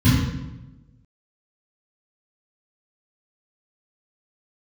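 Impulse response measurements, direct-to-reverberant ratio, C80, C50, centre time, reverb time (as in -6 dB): -13.5 dB, 2.5 dB, 0.0 dB, 76 ms, 1.0 s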